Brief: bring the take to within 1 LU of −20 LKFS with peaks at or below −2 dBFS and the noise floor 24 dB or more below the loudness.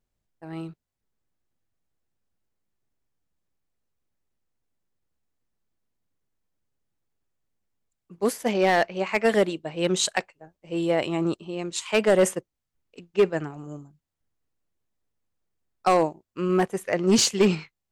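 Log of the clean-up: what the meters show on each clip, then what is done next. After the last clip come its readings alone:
share of clipped samples 0.3%; peaks flattened at −12.5 dBFS; integrated loudness −24.0 LKFS; sample peak −12.5 dBFS; target loudness −20.0 LKFS
→ clipped peaks rebuilt −12.5 dBFS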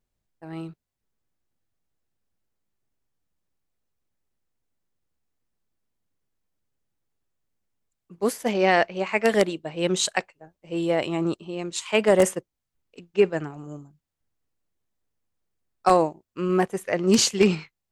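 share of clipped samples 0.0%; integrated loudness −23.5 LKFS; sample peak −3.5 dBFS; target loudness −20.0 LKFS
→ level +3.5 dB
brickwall limiter −2 dBFS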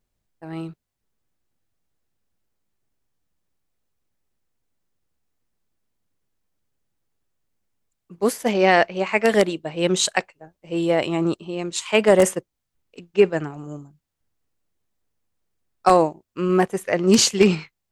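integrated loudness −20.0 LKFS; sample peak −2.0 dBFS; background noise floor −80 dBFS

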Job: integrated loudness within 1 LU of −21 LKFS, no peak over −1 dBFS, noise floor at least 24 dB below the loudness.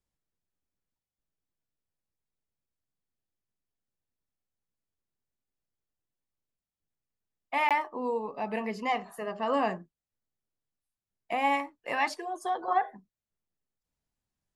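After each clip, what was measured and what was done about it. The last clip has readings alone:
number of dropouts 1; longest dropout 17 ms; integrated loudness −30.5 LKFS; sample peak −14.5 dBFS; target loudness −21.0 LKFS
→ repair the gap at 0:07.69, 17 ms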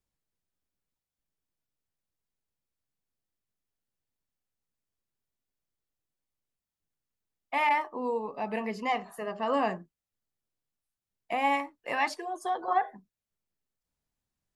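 number of dropouts 0; integrated loudness −30.5 LKFS; sample peak −14.5 dBFS; target loudness −21.0 LKFS
→ level +9.5 dB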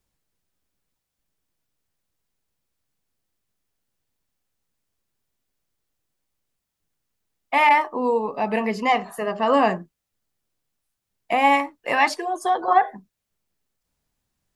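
integrated loudness −21.0 LKFS; sample peak −5.0 dBFS; background noise floor −82 dBFS

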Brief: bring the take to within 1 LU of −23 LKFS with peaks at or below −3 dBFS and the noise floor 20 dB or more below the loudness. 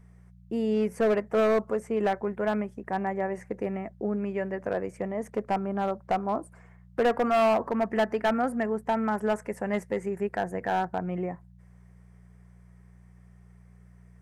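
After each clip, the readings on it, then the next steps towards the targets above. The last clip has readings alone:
share of clipped samples 1.3%; peaks flattened at −19.0 dBFS; mains hum 60 Hz; hum harmonics up to 180 Hz; level of the hum −51 dBFS; integrated loudness −28.5 LKFS; sample peak −19.0 dBFS; target loudness −23.0 LKFS
→ clipped peaks rebuilt −19 dBFS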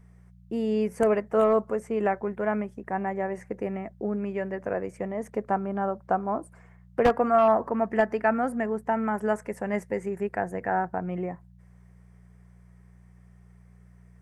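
share of clipped samples 0.0%; mains hum 60 Hz; hum harmonics up to 180 Hz; level of the hum −51 dBFS
→ hum removal 60 Hz, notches 3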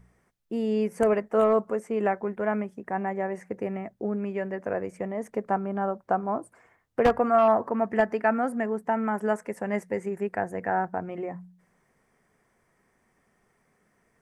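mains hum none found; integrated loudness −27.5 LKFS; sample peak −10.0 dBFS; target loudness −23.0 LKFS
→ level +4.5 dB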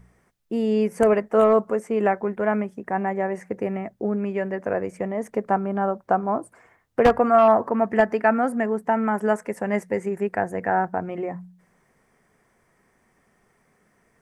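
integrated loudness −23.0 LKFS; sample peak −5.5 dBFS; background noise floor −65 dBFS

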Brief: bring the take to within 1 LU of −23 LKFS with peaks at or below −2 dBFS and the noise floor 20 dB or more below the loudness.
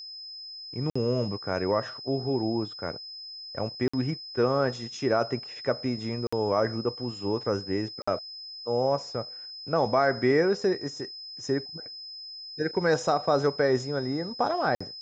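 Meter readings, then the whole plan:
number of dropouts 5; longest dropout 55 ms; interfering tone 5,100 Hz; level of the tone −39 dBFS; integrated loudness −28.5 LKFS; sample peak −10.5 dBFS; target loudness −23.0 LKFS
→ repair the gap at 0:00.90/0:03.88/0:06.27/0:08.02/0:14.75, 55 ms
notch filter 5,100 Hz, Q 30
level +5.5 dB

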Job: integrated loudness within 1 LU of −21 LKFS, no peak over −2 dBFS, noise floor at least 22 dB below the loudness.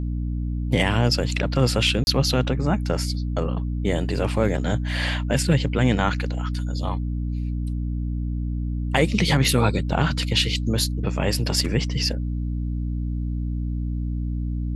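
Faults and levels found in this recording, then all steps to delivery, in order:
number of dropouts 1; longest dropout 31 ms; mains hum 60 Hz; hum harmonics up to 300 Hz; level of the hum −23 dBFS; integrated loudness −23.5 LKFS; sample peak −5.0 dBFS; target loudness −21.0 LKFS
→ repair the gap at 0:02.04, 31 ms
hum removal 60 Hz, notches 5
level +2.5 dB

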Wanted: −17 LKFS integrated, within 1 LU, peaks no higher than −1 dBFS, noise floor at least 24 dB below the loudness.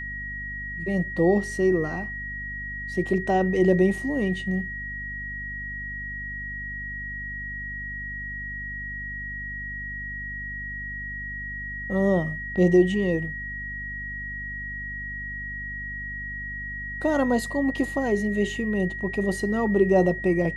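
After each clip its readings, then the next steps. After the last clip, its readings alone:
mains hum 50 Hz; hum harmonics up to 250 Hz; level of the hum −37 dBFS; interfering tone 1,900 Hz; level of the tone −32 dBFS; integrated loudness −26.5 LKFS; sample peak −8.0 dBFS; target loudness −17.0 LKFS
→ mains-hum notches 50/100/150/200/250 Hz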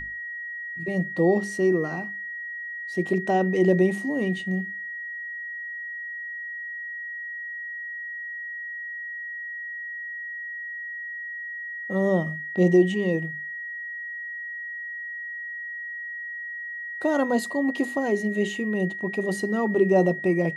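mains hum none found; interfering tone 1,900 Hz; level of the tone −32 dBFS
→ notch filter 1,900 Hz, Q 30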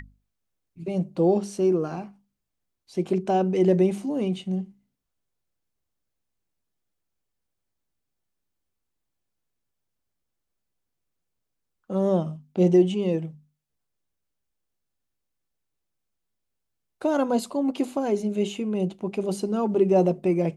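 interfering tone none found; integrated loudness −24.5 LKFS; sample peak −9.0 dBFS; target loudness −17.0 LKFS
→ level +7.5 dB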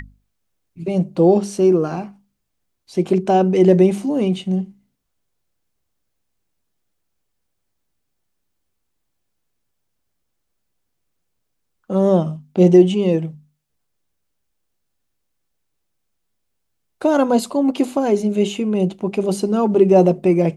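integrated loudness −17.0 LKFS; sample peak −1.5 dBFS; background noise floor −73 dBFS

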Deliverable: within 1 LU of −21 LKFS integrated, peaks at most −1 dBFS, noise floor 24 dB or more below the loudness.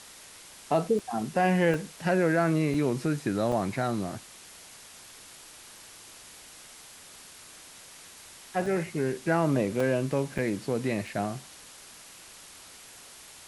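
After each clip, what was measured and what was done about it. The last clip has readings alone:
number of dropouts 8; longest dropout 3.3 ms; background noise floor −50 dBFS; target noise floor −52 dBFS; integrated loudness −28.0 LKFS; sample peak −12.0 dBFS; target loudness −21.0 LKFS
→ repair the gap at 0:00.99/0:01.74/0:02.74/0:03.52/0:08.66/0:09.80/0:10.38/0:11.07, 3.3 ms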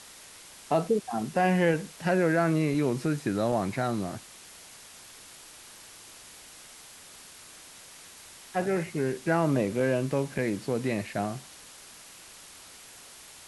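number of dropouts 0; background noise floor −50 dBFS; target noise floor −52 dBFS
→ broadband denoise 6 dB, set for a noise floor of −50 dBFS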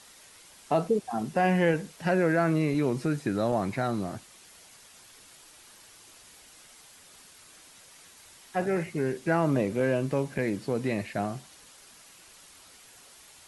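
background noise floor −54 dBFS; integrated loudness −28.0 LKFS; sample peak −12.0 dBFS; target loudness −21.0 LKFS
→ level +7 dB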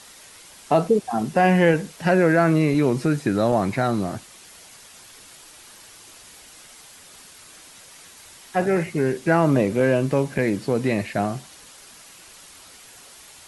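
integrated loudness −21.0 LKFS; sample peak −5.0 dBFS; background noise floor −47 dBFS

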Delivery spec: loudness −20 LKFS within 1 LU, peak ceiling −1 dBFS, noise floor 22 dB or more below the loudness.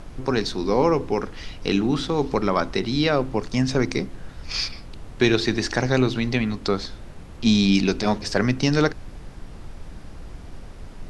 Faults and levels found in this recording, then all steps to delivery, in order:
background noise floor −40 dBFS; target noise floor −45 dBFS; integrated loudness −22.5 LKFS; sample peak −4.5 dBFS; target loudness −20.0 LKFS
→ noise reduction from a noise print 6 dB
level +2.5 dB

